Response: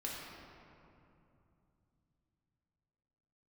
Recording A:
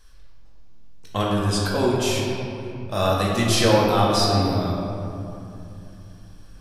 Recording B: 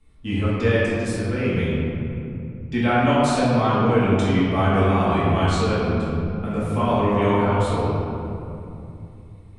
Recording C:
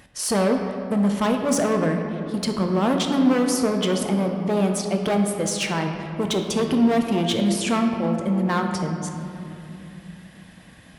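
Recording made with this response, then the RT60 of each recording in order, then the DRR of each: A; 2.8, 2.8, 2.9 s; -5.0, -10.5, 3.0 dB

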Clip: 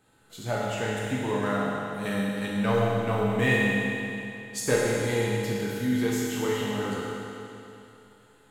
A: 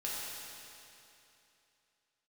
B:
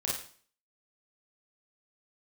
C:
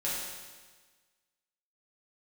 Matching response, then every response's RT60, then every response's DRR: A; 2.9, 0.45, 1.4 s; -7.0, -5.0, -8.0 dB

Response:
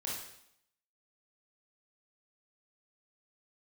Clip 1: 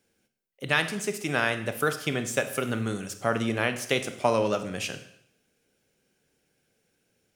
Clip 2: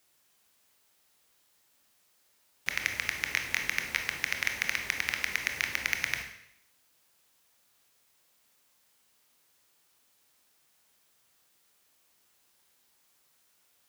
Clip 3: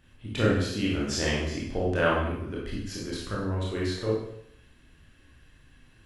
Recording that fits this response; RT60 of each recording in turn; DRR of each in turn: 3; 0.70, 0.70, 0.70 s; 8.5, 4.5, -5.5 dB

